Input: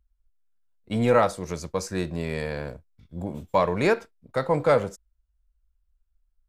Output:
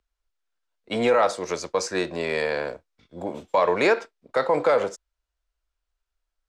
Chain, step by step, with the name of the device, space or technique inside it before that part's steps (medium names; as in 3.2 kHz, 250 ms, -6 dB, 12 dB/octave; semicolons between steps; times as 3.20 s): DJ mixer with the lows and highs turned down (three-band isolator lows -20 dB, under 310 Hz, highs -20 dB, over 7.9 kHz; peak limiter -18.5 dBFS, peak gain reduction 9 dB); trim +7.5 dB